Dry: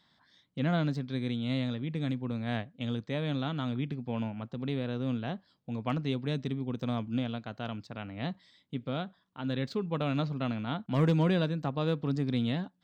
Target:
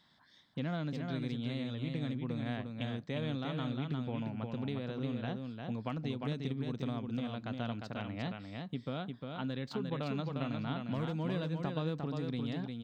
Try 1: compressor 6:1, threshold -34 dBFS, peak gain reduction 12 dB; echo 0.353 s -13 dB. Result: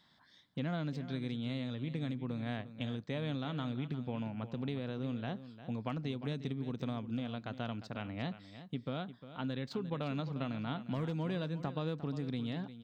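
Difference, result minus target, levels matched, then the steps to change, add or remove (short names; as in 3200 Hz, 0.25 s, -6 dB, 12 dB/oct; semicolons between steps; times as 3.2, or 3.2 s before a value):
echo-to-direct -8.5 dB
change: echo 0.353 s -4.5 dB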